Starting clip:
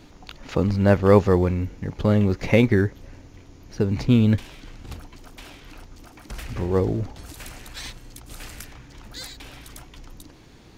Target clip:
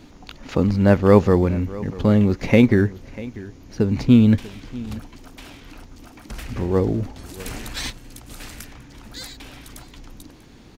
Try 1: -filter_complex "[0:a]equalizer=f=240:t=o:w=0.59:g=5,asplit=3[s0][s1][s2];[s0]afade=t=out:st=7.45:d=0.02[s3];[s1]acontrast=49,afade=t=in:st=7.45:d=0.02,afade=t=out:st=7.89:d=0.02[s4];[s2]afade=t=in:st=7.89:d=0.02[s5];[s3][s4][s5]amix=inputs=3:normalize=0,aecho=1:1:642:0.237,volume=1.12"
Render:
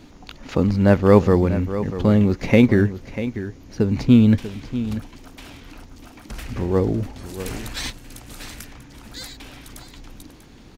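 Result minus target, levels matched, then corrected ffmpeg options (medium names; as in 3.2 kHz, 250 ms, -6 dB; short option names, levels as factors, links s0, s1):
echo-to-direct +6.5 dB
-filter_complex "[0:a]equalizer=f=240:t=o:w=0.59:g=5,asplit=3[s0][s1][s2];[s0]afade=t=out:st=7.45:d=0.02[s3];[s1]acontrast=49,afade=t=in:st=7.45:d=0.02,afade=t=out:st=7.89:d=0.02[s4];[s2]afade=t=in:st=7.89:d=0.02[s5];[s3][s4][s5]amix=inputs=3:normalize=0,aecho=1:1:642:0.112,volume=1.12"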